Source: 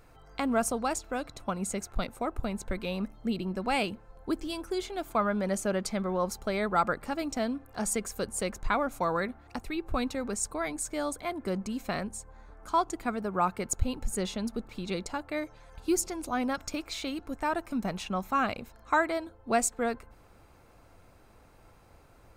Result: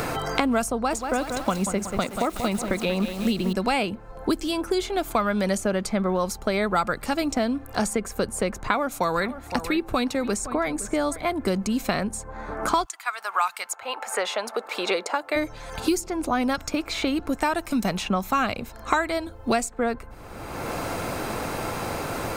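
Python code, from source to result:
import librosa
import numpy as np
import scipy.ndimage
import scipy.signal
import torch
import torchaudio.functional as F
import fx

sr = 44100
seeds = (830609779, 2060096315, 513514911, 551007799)

y = fx.echo_crushed(x, sr, ms=185, feedback_pct=55, bits=8, wet_db=-9, at=(0.74, 3.53))
y = fx.echo_single(y, sr, ms=514, db=-18.0, at=(8.62, 11.24))
y = fx.highpass(y, sr, hz=fx.line((12.84, 1100.0), (15.35, 400.0)), slope=24, at=(12.84, 15.35), fade=0.02)
y = fx.band_squash(y, sr, depth_pct=100)
y = y * 10.0 ** (6.0 / 20.0)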